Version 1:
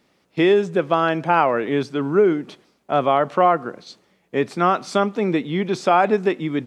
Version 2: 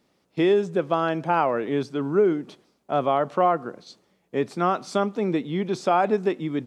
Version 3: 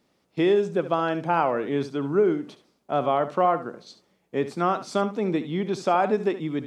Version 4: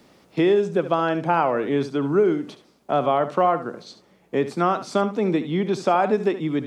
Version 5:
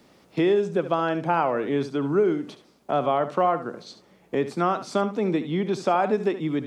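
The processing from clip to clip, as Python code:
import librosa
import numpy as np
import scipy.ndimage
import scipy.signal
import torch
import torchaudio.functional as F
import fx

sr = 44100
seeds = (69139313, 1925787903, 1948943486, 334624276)

y1 = fx.peak_eq(x, sr, hz=2100.0, db=-4.5, octaves=1.5)
y1 = y1 * librosa.db_to_amplitude(-3.5)
y2 = y1 + 10.0 ** (-13.0 / 20.0) * np.pad(y1, (int(71 * sr / 1000.0), 0))[:len(y1)]
y2 = y2 * librosa.db_to_amplitude(-1.0)
y3 = fx.band_squash(y2, sr, depth_pct=40)
y3 = y3 * librosa.db_to_amplitude(2.5)
y4 = fx.recorder_agc(y3, sr, target_db=-15.0, rise_db_per_s=5.5, max_gain_db=30)
y4 = y4 * librosa.db_to_amplitude(-2.5)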